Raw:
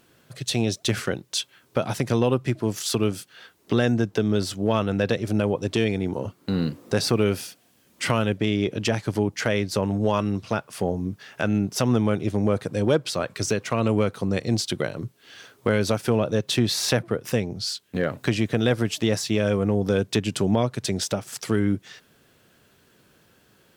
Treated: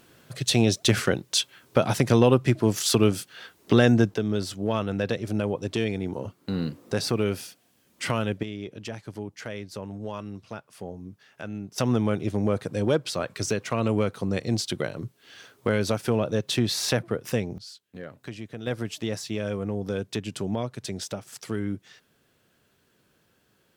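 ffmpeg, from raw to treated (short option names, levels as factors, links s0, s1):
-af "asetnsamples=n=441:p=0,asendcmd='4.14 volume volume -4dB;8.43 volume volume -12.5dB;11.78 volume volume -2.5dB;17.58 volume volume -15dB;18.67 volume volume -7.5dB',volume=1.41"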